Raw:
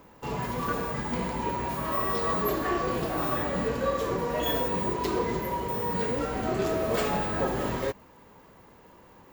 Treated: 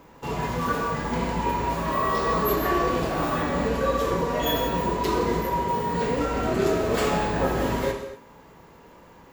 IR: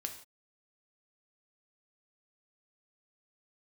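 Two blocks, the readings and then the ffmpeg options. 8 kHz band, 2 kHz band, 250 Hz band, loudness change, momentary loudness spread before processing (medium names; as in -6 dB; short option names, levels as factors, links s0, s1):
+4.5 dB, +4.5 dB, +4.5 dB, +3.5 dB, 4 LU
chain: -filter_complex "[1:a]atrim=start_sample=2205,afade=t=out:st=0.21:d=0.01,atrim=end_sample=9702,asetrate=25578,aresample=44100[s0];[0:a][s0]afir=irnorm=-1:irlink=0,volume=1.26"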